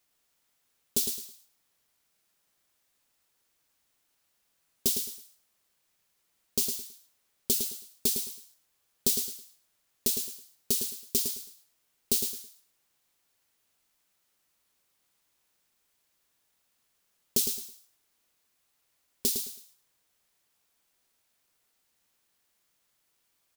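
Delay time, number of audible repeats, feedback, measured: 0.108 s, 3, 24%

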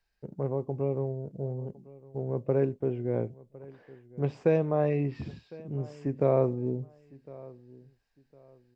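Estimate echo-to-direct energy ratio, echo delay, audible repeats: -20.5 dB, 1.057 s, 2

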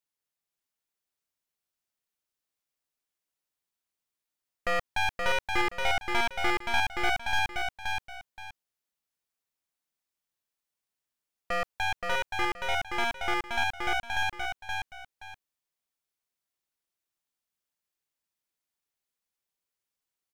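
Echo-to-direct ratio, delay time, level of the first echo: -3.5 dB, 0.524 s, -4.0 dB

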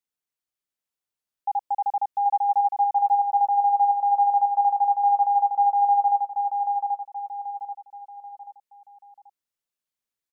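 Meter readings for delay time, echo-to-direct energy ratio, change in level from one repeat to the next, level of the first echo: 0.784 s, -3.0 dB, -7.5 dB, -4.0 dB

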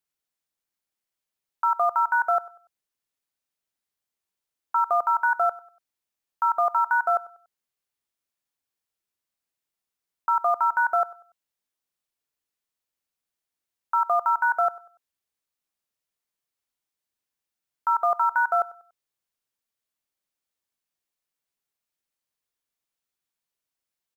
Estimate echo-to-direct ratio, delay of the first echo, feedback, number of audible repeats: -19.5 dB, 96 ms, 32%, 2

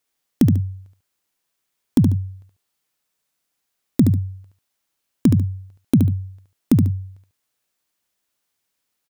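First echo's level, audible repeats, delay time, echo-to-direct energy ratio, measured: -5.0 dB, 2, 72 ms, -4.5 dB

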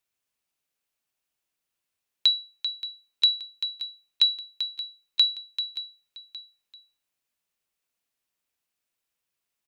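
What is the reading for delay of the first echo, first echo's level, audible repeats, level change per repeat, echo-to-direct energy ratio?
0.576 s, -15.0 dB, 2, -5.5 dB, -14.0 dB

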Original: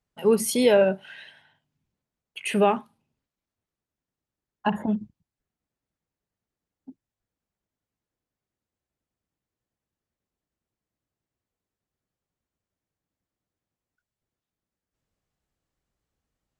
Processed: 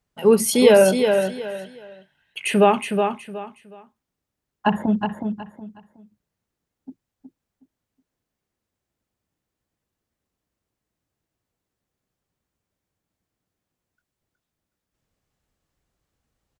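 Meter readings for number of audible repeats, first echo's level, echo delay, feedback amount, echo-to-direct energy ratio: 3, -6.0 dB, 0.368 s, 26%, -5.5 dB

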